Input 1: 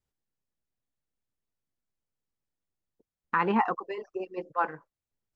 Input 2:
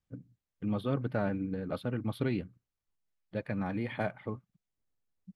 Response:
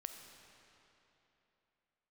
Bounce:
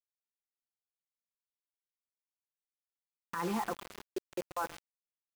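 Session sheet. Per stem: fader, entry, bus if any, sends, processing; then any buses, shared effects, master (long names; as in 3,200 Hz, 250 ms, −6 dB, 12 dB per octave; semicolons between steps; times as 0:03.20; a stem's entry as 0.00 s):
−2.5 dB, 0.00 s, no send, echo send −18.5 dB, high-shelf EQ 2,900 Hz −6 dB; comb filter 5.9 ms, depth 77%
−17.5 dB, 0.00 s, no send, echo send −3 dB, low-shelf EQ 120 Hz −9 dB; brickwall limiter −30.5 dBFS, peak gain reduction 11 dB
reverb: not used
echo: repeating echo 132 ms, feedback 28%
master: output level in coarse steps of 16 dB; bit reduction 7 bits; brickwall limiter −25.5 dBFS, peak gain reduction 7 dB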